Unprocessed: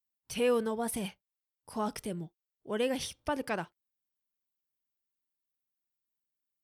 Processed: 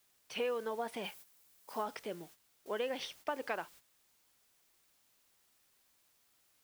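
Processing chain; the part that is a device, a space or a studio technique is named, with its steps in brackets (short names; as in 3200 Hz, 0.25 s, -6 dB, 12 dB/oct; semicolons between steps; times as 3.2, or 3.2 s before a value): baby monitor (BPF 430–3400 Hz; compressor 6:1, threshold -34 dBFS, peak gain reduction 8.5 dB; white noise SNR 18 dB; gate -58 dBFS, range -11 dB); 1.03–1.82 high shelf 9000 Hz -> 6100 Hz +8 dB; gain +1.5 dB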